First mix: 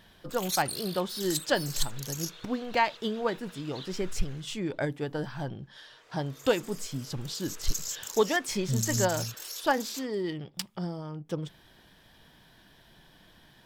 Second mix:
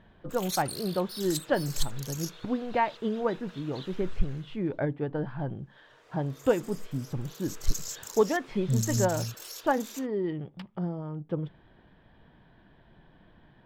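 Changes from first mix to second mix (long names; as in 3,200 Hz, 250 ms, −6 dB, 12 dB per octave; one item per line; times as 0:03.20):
speech: add high-frequency loss of the air 440 metres
master: add tilt shelving filter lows +3 dB, about 1,500 Hz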